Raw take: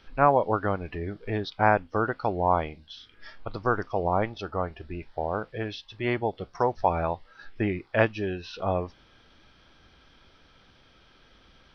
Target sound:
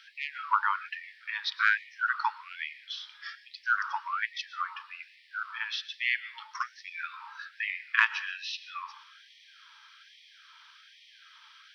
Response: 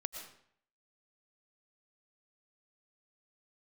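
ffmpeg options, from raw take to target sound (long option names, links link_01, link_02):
-filter_complex "[0:a]acontrast=35,asplit=2[link_01][link_02];[1:a]atrim=start_sample=2205[link_03];[link_02][link_03]afir=irnorm=-1:irlink=0,volume=-5.5dB[link_04];[link_01][link_04]amix=inputs=2:normalize=0,afftfilt=real='re*gte(b*sr/1024,820*pow(1800/820,0.5+0.5*sin(2*PI*1.2*pts/sr)))':imag='im*gte(b*sr/1024,820*pow(1800/820,0.5+0.5*sin(2*PI*1.2*pts/sr)))':win_size=1024:overlap=0.75,volume=-2.5dB"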